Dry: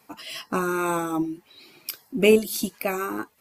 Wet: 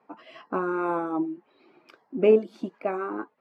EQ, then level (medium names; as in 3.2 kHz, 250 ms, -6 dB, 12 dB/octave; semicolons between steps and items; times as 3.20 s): high-pass 260 Hz 12 dB/octave; low-pass 1.2 kHz 12 dB/octave; 0.0 dB